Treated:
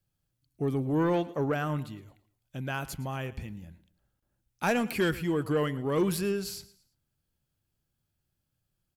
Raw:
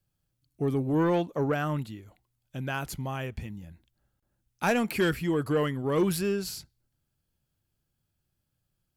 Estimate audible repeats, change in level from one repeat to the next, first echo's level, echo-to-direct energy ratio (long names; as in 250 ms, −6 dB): 2, −8.5 dB, −18.5 dB, −18.0 dB